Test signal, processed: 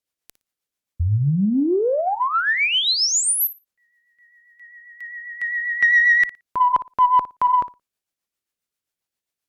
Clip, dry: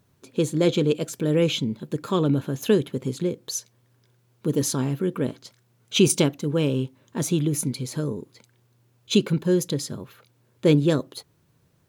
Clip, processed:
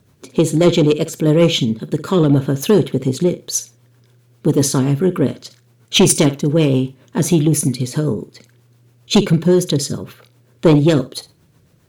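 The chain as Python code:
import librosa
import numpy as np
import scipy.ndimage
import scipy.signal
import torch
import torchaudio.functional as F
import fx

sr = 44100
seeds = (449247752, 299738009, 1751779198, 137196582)

y = fx.rotary(x, sr, hz=7.5)
y = fx.room_flutter(y, sr, wall_m=9.9, rt60_s=0.23)
y = fx.cheby_harmonics(y, sr, harmonics=(5, 8), levels_db=(-13, -37), full_scale_db=-5.5)
y = y * librosa.db_to_amplitude(4.5)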